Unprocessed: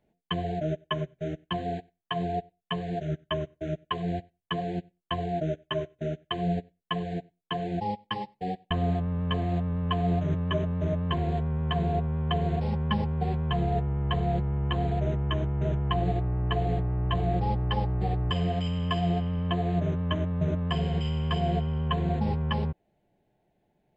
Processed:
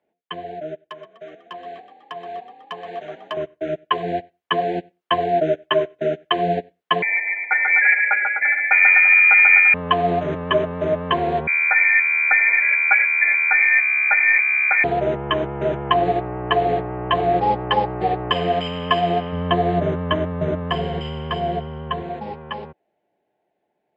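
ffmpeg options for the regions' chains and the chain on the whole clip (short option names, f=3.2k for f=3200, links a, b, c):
-filter_complex "[0:a]asettb=1/sr,asplit=3[a][b][c];[a]atrim=end=0.884[d];[b]atrim=start=0.88:end=3.37,asetpts=PTS-STARTPTS,afade=t=in:d=0.004:c=qsin,afade=t=out:st=2.486:d=0.004:c=qsin,acrossover=split=470|1200[e][f][g];[e]acompressor=threshold=-45dB:ratio=4[h];[f]acompressor=threshold=-38dB:ratio=4[i];[g]acompressor=threshold=-39dB:ratio=4[j];[h][i][j]amix=inputs=3:normalize=0,asoftclip=type=hard:threshold=-28.5dB,asplit=8[k][l][m][n][o][p][q][r];[l]adelay=124,afreqshift=35,volume=-13dB[s];[m]adelay=248,afreqshift=70,volume=-16.9dB[t];[n]adelay=372,afreqshift=105,volume=-20.8dB[u];[o]adelay=496,afreqshift=140,volume=-24.6dB[v];[p]adelay=620,afreqshift=175,volume=-28.5dB[w];[q]adelay=744,afreqshift=210,volume=-32.4dB[x];[r]adelay=868,afreqshift=245,volume=-36.3dB[y];[k][s][t][u][v][w][x][y]amix=inputs=8:normalize=0,atrim=end_sample=109809[z];[c]atrim=start=3.366[aa];[d][z]acrossfade=d=0.004:c1=hsin:c2=qsin[ab];[ab][aa]acrossfade=d=0.004:c1=qsin:c2=hsin,asettb=1/sr,asplit=3[ac][ad][ae];[ac]atrim=end=7.024[af];[ad]atrim=start=7.02:end=9.74,asetpts=PTS-STARTPTS,afade=t=in:d=0.004:c=qsin,afade=t=out:st=2.716:d=0.004:c=qsin,aecho=1:1:140|252|341.6|413.3|470.6:0.631|0.398|0.251|0.158|0.1,atrim=end_sample=119952,lowpass=f=2.1k:t=q:w=0.5098,lowpass=f=2.1k:t=q:w=0.6013,lowpass=f=2.1k:t=q:w=0.9,lowpass=f=2.1k:t=q:w=2.563,afreqshift=-2500[ag];[ae]atrim=start=9.736[ah];[af][ag]acrossfade=d=0.004:c1=hsin:c2=qsin[ai];[ai][ah]acrossfade=d=0.004:c1=qsin:c2=hsin,asettb=1/sr,asplit=3[aj][ak][al];[aj]atrim=end=11.474[am];[ak]atrim=start=11.47:end=14.84,asetpts=PTS-STARTPTS,afade=t=in:d=0.004:c=qsin,afade=t=out:st=3.366:d=0.004:c=qsin,highpass=f=110:p=1,lowpass=f=2.1k:t=q:w=0.5098,lowpass=f=2.1k:t=q:w=0.6013,lowpass=f=2.1k:t=q:w=0.9,lowpass=f=2.1k:t=q:w=2.563,afreqshift=-2500[an];[al]atrim=start=14.836[ao];[am][an]acrossfade=d=0.004:c1=hsin:c2=qsin[ap];[ap][ao]acrossfade=d=0.004:c1=qsin:c2=hsin,asettb=1/sr,asplit=3[aq][ar][as];[aq]atrim=end=19.324[at];[ar]atrim=start=19.32:end=22.02,asetpts=PTS-STARTPTS,afade=t=in:d=0.004:c=qsin,afade=t=out:st=2.696:d=0.004:c=qsin,lowshelf=f=160:g=11,bandreject=f=2.5k:w=13[au];[as]atrim=start=22.016[av];[at][au]acrossfade=d=0.004:c1=hsin:c2=qsin[aw];[aw][av]acrossfade=d=0.004:c1=qsin:c2=hsin,highpass=65,acrossover=split=300 3400:gain=0.112 1 0.2[ax][ay][az];[ax][ay][az]amix=inputs=3:normalize=0,dynaudnorm=f=220:g=31:m=12.5dB,volume=2dB"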